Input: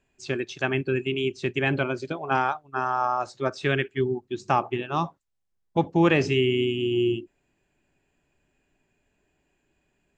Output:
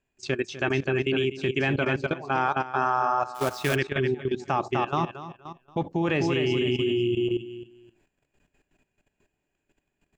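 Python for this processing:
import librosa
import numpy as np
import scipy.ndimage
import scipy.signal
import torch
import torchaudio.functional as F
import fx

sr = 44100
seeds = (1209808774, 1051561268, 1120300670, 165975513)

y = fx.echo_feedback(x, sr, ms=250, feedback_pct=27, wet_db=-6.0)
y = fx.level_steps(y, sr, step_db=14)
y = fx.quant_companded(y, sr, bits=4, at=(3.34, 3.74), fade=0.02)
y = y * librosa.db_to_amplitude(4.0)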